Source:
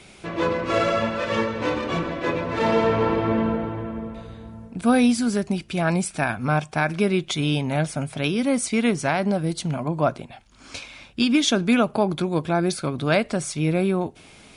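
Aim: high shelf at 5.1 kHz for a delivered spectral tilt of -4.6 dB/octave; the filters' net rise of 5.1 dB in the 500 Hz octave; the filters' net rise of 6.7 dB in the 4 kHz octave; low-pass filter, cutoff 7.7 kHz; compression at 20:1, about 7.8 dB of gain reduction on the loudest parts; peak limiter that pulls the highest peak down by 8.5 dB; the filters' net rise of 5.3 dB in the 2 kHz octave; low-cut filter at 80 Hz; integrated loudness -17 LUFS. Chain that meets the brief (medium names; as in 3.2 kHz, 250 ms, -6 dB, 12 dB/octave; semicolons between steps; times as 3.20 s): high-pass 80 Hz; low-pass 7.7 kHz; peaking EQ 500 Hz +6 dB; peaking EQ 2 kHz +4.5 dB; peaking EQ 4 kHz +5 dB; treble shelf 5.1 kHz +5 dB; compression 20:1, threshold -18 dBFS; trim +9 dB; peak limiter -6 dBFS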